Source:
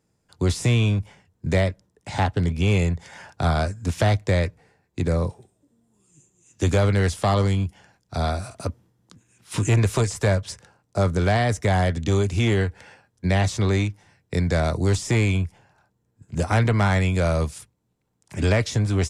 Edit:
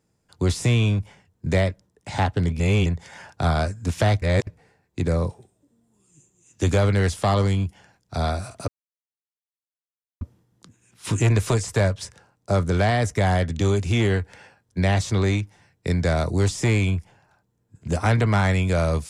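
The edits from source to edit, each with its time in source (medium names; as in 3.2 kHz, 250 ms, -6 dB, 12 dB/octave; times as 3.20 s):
2.60–2.86 s: reverse
4.22–4.47 s: reverse
8.68 s: insert silence 1.53 s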